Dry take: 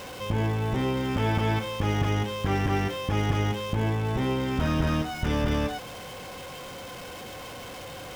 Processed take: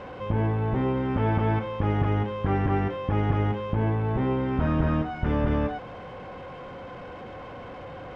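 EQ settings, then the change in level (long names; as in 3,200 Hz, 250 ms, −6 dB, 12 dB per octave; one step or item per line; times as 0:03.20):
low-pass filter 1,600 Hz 12 dB per octave
+1.5 dB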